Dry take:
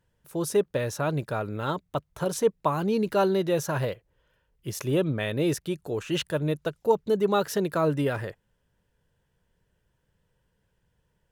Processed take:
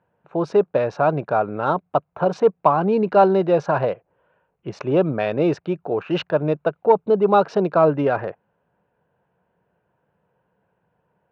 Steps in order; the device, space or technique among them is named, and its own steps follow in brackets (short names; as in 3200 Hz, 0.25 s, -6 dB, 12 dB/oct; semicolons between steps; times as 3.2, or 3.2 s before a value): Wiener smoothing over 9 samples; overdrive pedal into a guitar cabinet (overdrive pedal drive 11 dB, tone 2100 Hz, clips at -9 dBFS; speaker cabinet 110–4400 Hz, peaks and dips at 180 Hz +4 dB, 730 Hz +7 dB, 1900 Hz -9 dB, 3300 Hz -10 dB); 6.93–7.78 bell 1800 Hz -6 dB 0.36 oct; gain +5.5 dB